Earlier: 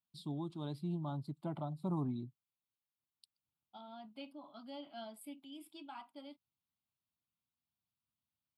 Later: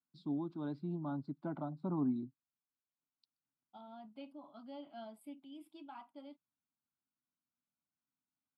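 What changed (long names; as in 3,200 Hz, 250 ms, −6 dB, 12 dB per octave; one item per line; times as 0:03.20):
first voice: add loudspeaker in its box 170–6,200 Hz, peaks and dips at 270 Hz +9 dB, 1,500 Hz +10 dB, 3,100 Hz −7 dB
master: add high-shelf EQ 2,400 Hz −11.5 dB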